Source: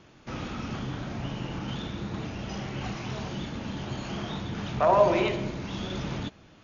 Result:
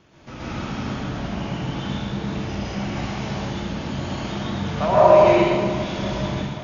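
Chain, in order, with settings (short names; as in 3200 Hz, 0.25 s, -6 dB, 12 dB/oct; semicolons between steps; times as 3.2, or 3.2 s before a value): thinning echo 0.531 s, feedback 67%, level -15 dB; plate-style reverb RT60 1.4 s, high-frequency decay 0.85×, pre-delay 0.105 s, DRR -7.5 dB; gain -1.5 dB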